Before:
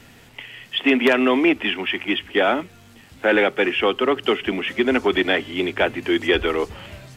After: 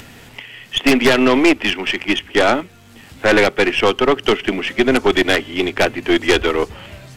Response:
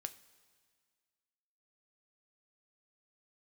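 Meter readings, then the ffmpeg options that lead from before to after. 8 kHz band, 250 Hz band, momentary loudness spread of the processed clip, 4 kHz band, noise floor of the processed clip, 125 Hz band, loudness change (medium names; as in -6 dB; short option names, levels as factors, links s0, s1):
no reading, +4.0 dB, 9 LU, +4.5 dB, -43 dBFS, +7.5 dB, +4.0 dB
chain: -af "acompressor=mode=upward:threshold=0.0178:ratio=2.5,aeval=exprs='0.562*(cos(1*acos(clip(val(0)/0.562,-1,1)))-cos(1*PI/2))+0.2*(cos(2*acos(clip(val(0)/0.562,-1,1)))-cos(2*PI/2))+0.251*(cos(5*acos(clip(val(0)/0.562,-1,1)))-cos(5*PI/2))+0.0282*(cos(6*acos(clip(val(0)/0.562,-1,1)))-cos(6*PI/2))+0.158*(cos(7*acos(clip(val(0)/0.562,-1,1)))-cos(7*PI/2))':c=same"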